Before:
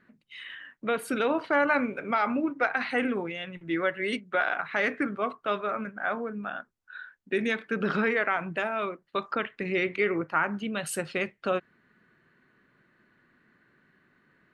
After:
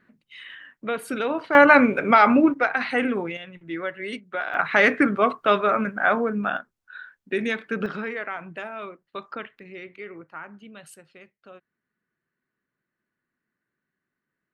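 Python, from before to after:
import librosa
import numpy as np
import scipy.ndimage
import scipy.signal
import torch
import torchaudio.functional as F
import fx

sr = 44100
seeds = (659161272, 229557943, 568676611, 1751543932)

y = fx.gain(x, sr, db=fx.steps((0.0, 0.5), (1.55, 11.0), (2.54, 4.0), (3.37, -2.5), (4.54, 9.5), (6.57, 2.0), (7.86, -5.0), (9.59, -12.5), (10.94, -19.0)))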